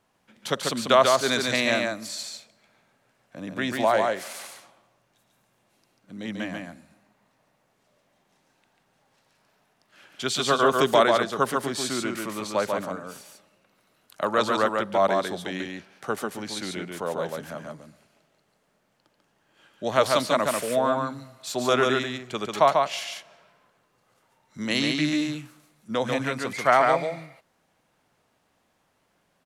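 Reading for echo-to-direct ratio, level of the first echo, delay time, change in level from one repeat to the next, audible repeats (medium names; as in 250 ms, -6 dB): -3.5 dB, -3.5 dB, 142 ms, no regular repeats, 1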